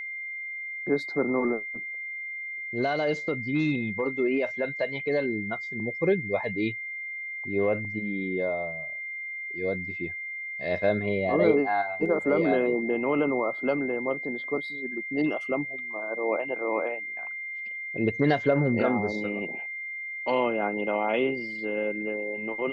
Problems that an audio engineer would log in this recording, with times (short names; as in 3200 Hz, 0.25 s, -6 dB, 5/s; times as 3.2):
tone 2100 Hz -33 dBFS